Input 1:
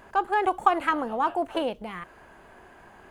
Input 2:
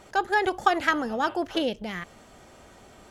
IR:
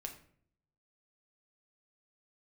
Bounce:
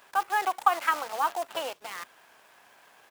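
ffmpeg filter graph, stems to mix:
-filter_complex "[0:a]highpass=630,acrusher=bits=7:dc=4:mix=0:aa=0.000001,volume=0.5dB,asplit=2[link_01][link_02];[1:a]acrusher=samples=21:mix=1:aa=0.000001,aeval=exprs='abs(val(0))':channel_layout=same,volume=-1,adelay=4.3,volume=-8.5dB[link_03];[link_02]apad=whole_len=137208[link_04];[link_03][link_04]sidechaincompress=threshold=-33dB:ratio=8:attack=16:release=286[link_05];[link_01][link_05]amix=inputs=2:normalize=0,highpass=frequency=560:poles=1"

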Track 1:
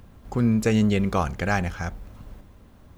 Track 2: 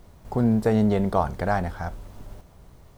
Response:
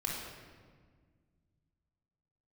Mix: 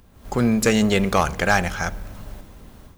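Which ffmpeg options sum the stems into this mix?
-filter_complex "[0:a]highshelf=frequency=3300:gain=7,aeval=exprs='clip(val(0),-1,0.158)':channel_layout=same,equalizer=frequency=97:width=2.1:gain=-3.5,volume=-5dB,asplit=2[link_01][link_02];[link_02]volume=-22dB[link_03];[1:a]volume=-1,volume=-13dB[link_04];[2:a]atrim=start_sample=2205[link_05];[link_03][link_05]afir=irnorm=-1:irlink=0[link_06];[link_01][link_04][link_06]amix=inputs=3:normalize=0,dynaudnorm=framelen=130:gausssize=3:maxgain=10.5dB"

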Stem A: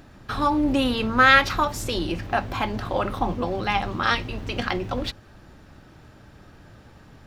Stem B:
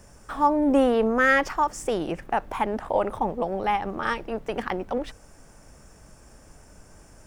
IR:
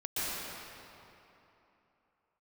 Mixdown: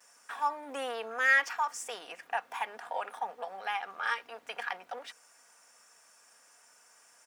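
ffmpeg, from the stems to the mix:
-filter_complex "[0:a]deesser=0.9,afwtdn=0.0224,acompressor=threshold=-27dB:ratio=6,volume=-6.5dB[link_01];[1:a]adelay=4.7,volume=-3.5dB[link_02];[link_01][link_02]amix=inputs=2:normalize=0,highpass=1100,aecho=1:1:4.2:0.4"

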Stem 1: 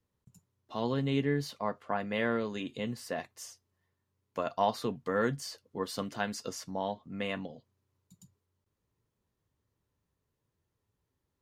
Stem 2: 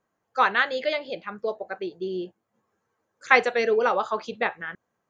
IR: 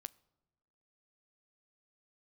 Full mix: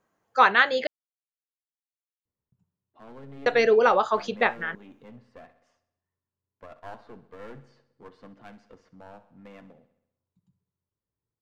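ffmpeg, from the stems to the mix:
-filter_complex "[0:a]lowpass=1800,aeval=exprs='clip(val(0),-1,0.0141)':channel_layout=same,adelay=2250,volume=-9.5dB,asplit=2[link_01][link_02];[link_02]volume=-15dB[link_03];[1:a]volume=3dB,asplit=3[link_04][link_05][link_06];[link_04]atrim=end=0.87,asetpts=PTS-STARTPTS,afade=type=out:start_time=0.866:duration=0.004:curve=hsin[link_07];[link_05]atrim=start=0.87:end=3.46,asetpts=PTS-STARTPTS,volume=0[link_08];[link_06]atrim=start=3.46,asetpts=PTS-STARTPTS,afade=type=in:duration=0.004:curve=hsin[link_09];[link_07][link_08][link_09]concat=n=3:v=0:a=1[link_10];[link_03]aecho=0:1:65|130|195|260|325|390|455|520|585:1|0.59|0.348|0.205|0.121|0.0715|0.0422|0.0249|0.0147[link_11];[link_01][link_10][link_11]amix=inputs=3:normalize=0"

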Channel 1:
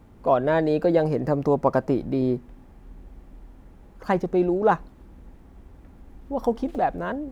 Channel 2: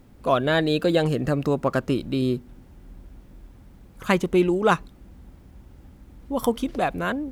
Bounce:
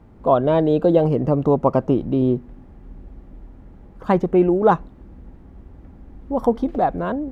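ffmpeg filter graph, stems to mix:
ffmpeg -i stem1.wav -i stem2.wav -filter_complex "[0:a]acrusher=bits=11:mix=0:aa=0.000001,volume=3dB[link_01];[1:a]volume=-5dB[link_02];[link_01][link_02]amix=inputs=2:normalize=0,lowpass=frequency=1600:poles=1" out.wav

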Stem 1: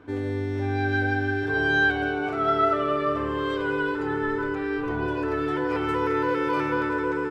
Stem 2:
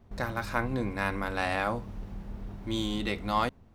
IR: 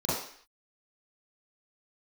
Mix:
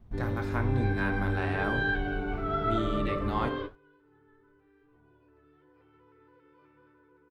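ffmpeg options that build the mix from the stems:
-filter_complex "[0:a]lowpass=frequency=4800:width=0.5412,lowpass=frequency=4800:width=1.3066,adelay=50,volume=-4.5dB[link_01];[1:a]acrossover=split=3300[link_02][link_03];[link_03]acompressor=threshold=-49dB:ratio=4:attack=1:release=60[link_04];[link_02][link_04]amix=inputs=2:normalize=0,volume=-0.5dB,asplit=3[link_05][link_06][link_07];[link_06]volume=-20.5dB[link_08];[link_07]apad=whole_len=324209[link_09];[link_01][link_09]sidechaingate=range=-29dB:threshold=-49dB:ratio=16:detection=peak[link_10];[2:a]atrim=start_sample=2205[link_11];[link_08][link_11]afir=irnorm=-1:irlink=0[link_12];[link_10][link_05][link_12]amix=inputs=3:normalize=0,lowshelf=frequency=170:gain=8.5,flanger=delay=5.3:depth=8.4:regen=-67:speed=1:shape=triangular"

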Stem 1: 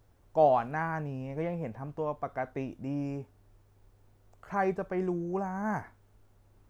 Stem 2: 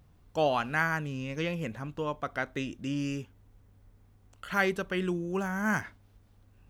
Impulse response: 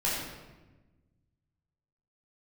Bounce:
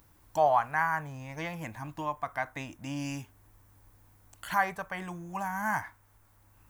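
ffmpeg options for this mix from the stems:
-filter_complex "[0:a]equalizer=frequency=125:width_type=o:width=1:gain=4,equalizer=frequency=250:width_type=o:width=1:gain=-11,equalizer=frequency=1000:width_type=o:width=1:gain=12,equalizer=frequency=2000:width_type=o:width=1:gain=9,equalizer=frequency=4000:width_type=o:width=1:gain=-11,volume=-7dB,asplit=2[link_01][link_02];[1:a]equalizer=frequency=320:width=4.4:gain=11,volume=-5.5dB[link_03];[link_02]apad=whole_len=295289[link_04];[link_03][link_04]sidechaincompress=threshold=-36dB:ratio=8:attack=11:release=1430[link_05];[link_01][link_05]amix=inputs=2:normalize=0,crystalizer=i=4.5:c=0"

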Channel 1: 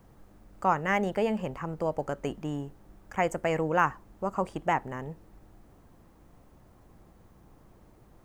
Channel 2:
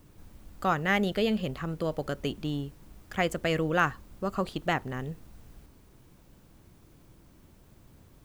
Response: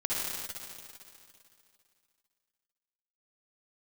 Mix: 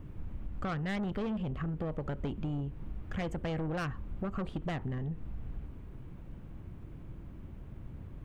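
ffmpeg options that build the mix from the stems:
-filter_complex "[0:a]highpass=frequency=980:width=0.5412,highpass=frequency=980:width=1.3066,volume=-8.5dB[link_01];[1:a]lowpass=frequency=2900:width=0.5412,lowpass=frequency=2900:width=1.3066,lowshelf=frequency=270:gain=11.5,volume=-1,volume=1.5dB[link_02];[link_01][link_02]amix=inputs=2:normalize=0,asoftclip=type=tanh:threshold=-23dB,acompressor=threshold=-33dB:ratio=6"

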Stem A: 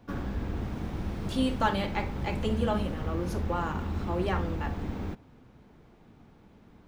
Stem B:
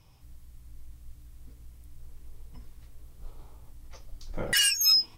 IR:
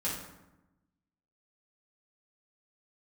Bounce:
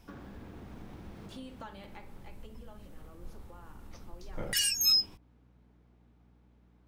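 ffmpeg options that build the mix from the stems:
-filter_complex "[0:a]highpass=frequency=120:poles=1,acompressor=threshold=-40dB:ratio=4,volume=-5dB,afade=type=out:start_time=1.61:duration=0.71:silence=0.446684,asplit=2[link_01][link_02];[1:a]volume=-0.5dB[link_03];[link_02]apad=whole_len=228153[link_04];[link_03][link_04]sidechaincompress=threshold=-54dB:ratio=8:attack=30:release=244[link_05];[link_01][link_05]amix=inputs=2:normalize=0,acrossover=split=290|3000[link_06][link_07][link_08];[link_07]acompressor=threshold=-38dB:ratio=6[link_09];[link_06][link_09][link_08]amix=inputs=3:normalize=0,aeval=exprs='val(0)+0.000794*(sin(2*PI*60*n/s)+sin(2*PI*2*60*n/s)/2+sin(2*PI*3*60*n/s)/3+sin(2*PI*4*60*n/s)/4+sin(2*PI*5*60*n/s)/5)':channel_layout=same"

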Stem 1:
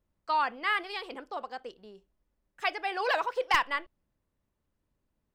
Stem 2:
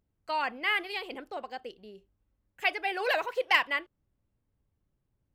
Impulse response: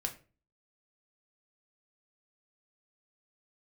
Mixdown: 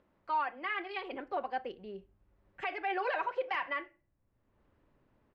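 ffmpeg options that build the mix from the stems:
-filter_complex "[0:a]highpass=250,acompressor=mode=upward:threshold=-51dB:ratio=2.5,volume=-5dB,asplit=2[link_01][link_02];[1:a]dynaudnorm=framelen=310:gausssize=5:maxgain=9dB,adelay=4.8,volume=-3.5dB,asplit=2[link_03][link_04];[link_04]volume=-15dB[link_05];[link_02]apad=whole_len=235951[link_06];[link_03][link_06]sidechaincompress=threshold=-43dB:ratio=3:attack=16:release=1110[link_07];[2:a]atrim=start_sample=2205[link_08];[link_05][link_08]afir=irnorm=-1:irlink=0[link_09];[link_01][link_07][link_09]amix=inputs=3:normalize=0,lowpass=2200,alimiter=level_in=0.5dB:limit=-24dB:level=0:latency=1:release=52,volume=-0.5dB"

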